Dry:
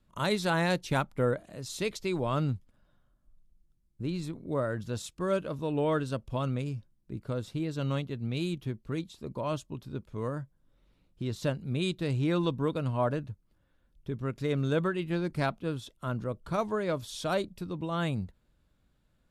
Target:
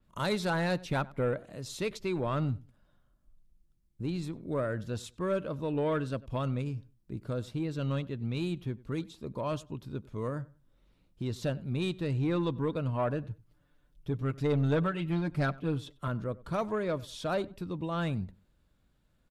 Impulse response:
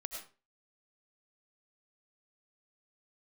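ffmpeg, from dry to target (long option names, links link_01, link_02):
-filter_complex "[0:a]asettb=1/sr,asplit=3[link_01][link_02][link_03];[link_01]atrim=end=13.304[link_04];[link_02]atrim=start=13.3:end=16.08,asetpts=PTS-STARTPTS,afade=type=in:duration=0.004:curve=qsin,afade=type=out:start_time=2.776:duration=0.004:curve=qsin,aecho=1:1:6.8:0.74,atrim=end_sample=122598[link_05];[link_03]atrim=start=16.076[link_06];[link_04][link_05]acrossfade=duration=0.004:curve1=hsin:curve2=qsin[link_07];[link_07][link_06]acrossfade=duration=0.004:curve1=qsin:curve2=hsin,asoftclip=type=tanh:threshold=-21.5dB,asplit=2[link_08][link_09];[link_09]adelay=95,lowpass=frequency=2600:poles=1,volume=-21dB,asplit=2[link_10][link_11];[link_11]adelay=95,lowpass=frequency=2600:poles=1,volume=0.24[link_12];[link_08][link_10][link_12]amix=inputs=3:normalize=0,adynamicequalizer=threshold=0.00158:dfrequency=4100:dqfactor=0.7:tfrequency=4100:tqfactor=0.7:attack=5:release=100:ratio=0.375:range=4:mode=cutabove:tftype=highshelf"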